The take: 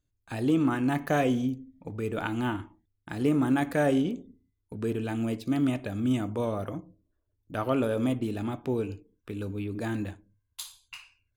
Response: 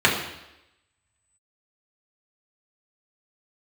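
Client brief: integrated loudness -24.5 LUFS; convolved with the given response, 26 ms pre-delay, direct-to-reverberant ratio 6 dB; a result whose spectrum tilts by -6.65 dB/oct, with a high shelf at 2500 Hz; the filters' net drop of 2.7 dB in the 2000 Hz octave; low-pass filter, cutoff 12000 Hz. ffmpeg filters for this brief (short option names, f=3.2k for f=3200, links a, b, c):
-filter_complex "[0:a]lowpass=12k,equalizer=f=2k:t=o:g=-6,highshelf=f=2.5k:g=5,asplit=2[a][b];[1:a]atrim=start_sample=2205,adelay=26[c];[b][c]afir=irnorm=-1:irlink=0,volume=-26.5dB[d];[a][d]amix=inputs=2:normalize=0,volume=4dB"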